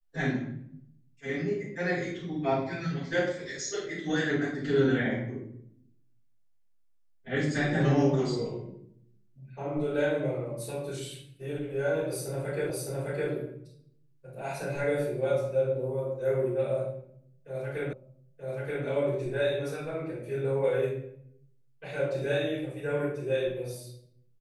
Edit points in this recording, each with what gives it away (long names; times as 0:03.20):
0:12.70: the same again, the last 0.61 s
0:17.93: the same again, the last 0.93 s